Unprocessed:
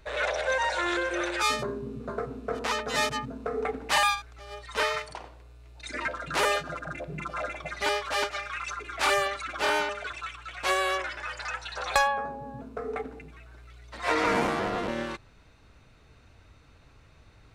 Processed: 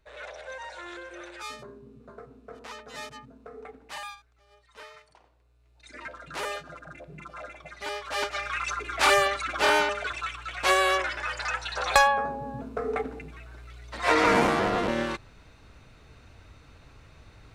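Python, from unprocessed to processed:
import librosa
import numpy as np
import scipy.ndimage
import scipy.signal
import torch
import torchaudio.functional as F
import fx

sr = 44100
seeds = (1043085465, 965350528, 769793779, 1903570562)

y = fx.gain(x, sr, db=fx.line((3.52, -13.0), (4.92, -20.0), (6.15, -8.0), (7.85, -8.0), (8.49, 4.0)))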